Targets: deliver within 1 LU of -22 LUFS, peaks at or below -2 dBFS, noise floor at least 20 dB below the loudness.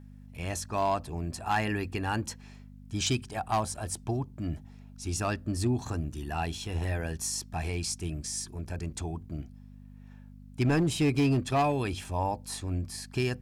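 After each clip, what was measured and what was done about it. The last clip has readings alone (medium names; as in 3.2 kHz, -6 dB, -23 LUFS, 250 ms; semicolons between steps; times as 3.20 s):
clipped samples 0.7%; clipping level -20.0 dBFS; hum 50 Hz; highest harmonic 250 Hz; hum level -47 dBFS; loudness -31.5 LUFS; peak level -20.0 dBFS; loudness target -22.0 LUFS
-> clip repair -20 dBFS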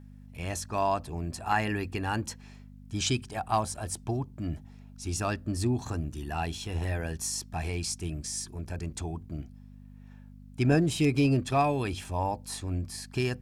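clipped samples 0.0%; hum 50 Hz; highest harmonic 250 Hz; hum level -47 dBFS
-> de-hum 50 Hz, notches 5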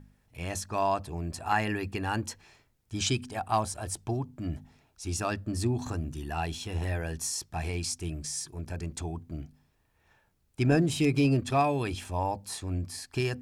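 hum not found; loudness -31.0 LUFS; peak level -11.5 dBFS; loudness target -22.0 LUFS
-> trim +9 dB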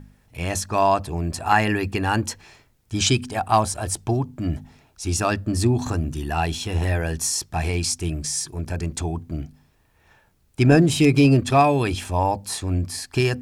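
loudness -22.0 LUFS; peak level -2.5 dBFS; noise floor -61 dBFS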